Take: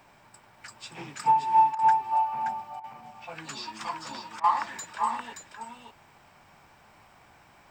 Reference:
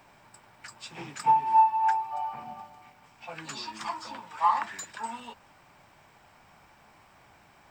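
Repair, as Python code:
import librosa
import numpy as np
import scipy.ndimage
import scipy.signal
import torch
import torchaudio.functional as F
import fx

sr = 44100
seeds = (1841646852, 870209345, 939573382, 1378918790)

y = fx.fix_interpolate(x, sr, at_s=(1.75, 2.8, 4.4), length_ms=37.0)
y = fx.fix_echo_inverse(y, sr, delay_ms=575, level_db=-5.5)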